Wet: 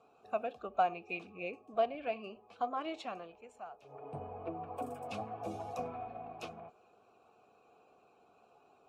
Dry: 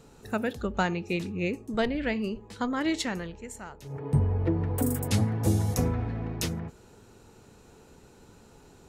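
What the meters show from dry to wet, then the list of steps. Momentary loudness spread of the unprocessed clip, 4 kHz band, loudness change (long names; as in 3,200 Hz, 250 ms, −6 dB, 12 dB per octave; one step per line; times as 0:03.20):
12 LU, −14.0 dB, −10.5 dB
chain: spectral magnitudes quantised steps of 15 dB
formant filter a
level +5 dB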